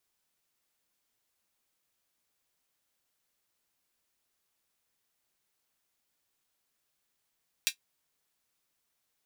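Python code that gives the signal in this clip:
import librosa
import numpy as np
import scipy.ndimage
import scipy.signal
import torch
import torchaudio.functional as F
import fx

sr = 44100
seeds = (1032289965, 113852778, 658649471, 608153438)

y = fx.drum_hat(sr, length_s=0.24, from_hz=2700.0, decay_s=0.1)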